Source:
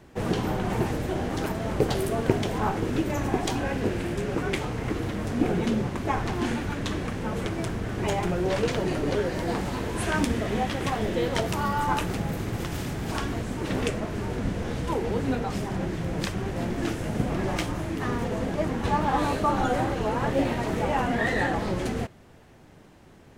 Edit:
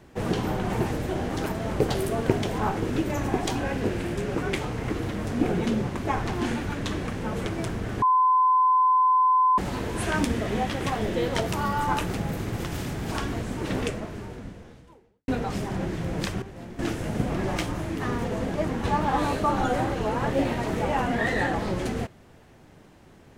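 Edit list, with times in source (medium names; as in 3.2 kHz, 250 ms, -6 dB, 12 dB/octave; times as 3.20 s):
8.02–9.58 s: bleep 1.02 kHz -16.5 dBFS
13.74–15.28 s: fade out quadratic
16.42–16.79 s: gain -11 dB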